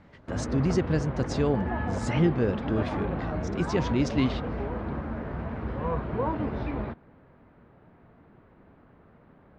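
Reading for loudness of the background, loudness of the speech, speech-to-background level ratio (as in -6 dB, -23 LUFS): -32.5 LUFS, -29.0 LUFS, 3.5 dB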